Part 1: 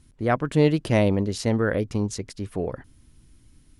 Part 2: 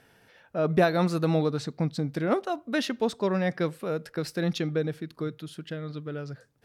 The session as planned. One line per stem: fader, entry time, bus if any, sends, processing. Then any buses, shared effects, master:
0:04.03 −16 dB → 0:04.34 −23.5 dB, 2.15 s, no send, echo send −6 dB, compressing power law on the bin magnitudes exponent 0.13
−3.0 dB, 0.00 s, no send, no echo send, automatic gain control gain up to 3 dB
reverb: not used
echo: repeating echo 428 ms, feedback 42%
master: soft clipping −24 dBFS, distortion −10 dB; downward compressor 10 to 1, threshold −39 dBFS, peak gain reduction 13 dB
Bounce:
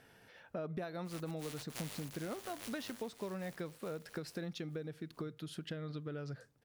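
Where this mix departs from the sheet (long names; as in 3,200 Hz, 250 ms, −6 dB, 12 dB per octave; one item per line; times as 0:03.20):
stem 1: entry 2.15 s → 0.85 s
master: missing soft clipping −24 dBFS, distortion −10 dB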